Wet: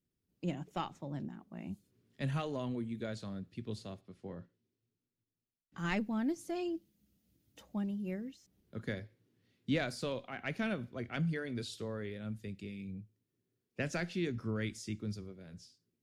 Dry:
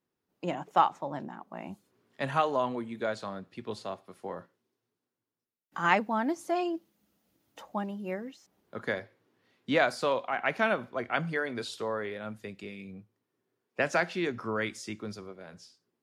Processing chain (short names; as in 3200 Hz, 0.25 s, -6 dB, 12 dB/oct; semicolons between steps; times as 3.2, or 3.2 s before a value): 4.01–5.78 air absorption 81 m; in parallel at -4 dB: soft clip -16.5 dBFS, distortion -17 dB; on the sum: passive tone stack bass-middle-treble 10-0-1; gain +12.5 dB